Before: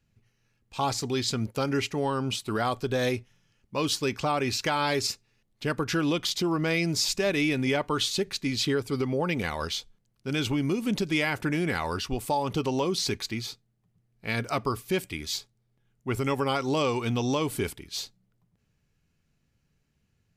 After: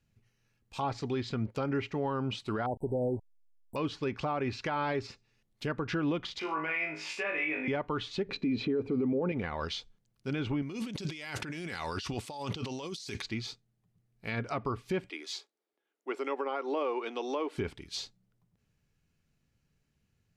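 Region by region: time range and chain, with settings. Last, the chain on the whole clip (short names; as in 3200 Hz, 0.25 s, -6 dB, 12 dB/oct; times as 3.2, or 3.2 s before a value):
2.66–3.76 level-crossing sampler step -39 dBFS + brick-wall FIR band-stop 980–7700 Hz + high shelf 9000 Hz +9 dB
6.39–7.68 HPF 580 Hz + resonant high shelf 3200 Hz -7.5 dB, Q 3 + flutter echo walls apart 3.3 m, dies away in 0.39 s
8.29–9.32 high shelf 4100 Hz -5.5 dB + small resonant body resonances 270/430/2400/4000 Hz, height 14 dB, ringing for 25 ms + upward compressor, threshold -32 dBFS
10.62–13.22 HPF 60 Hz + high shelf 2600 Hz +12 dB + negative-ratio compressor -35 dBFS
15.1–17.58 steep high-pass 310 Hz + high shelf 4200 Hz -8 dB
whole clip: treble ducked by the level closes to 2000 Hz, closed at -24 dBFS; limiter -20.5 dBFS; gain -3 dB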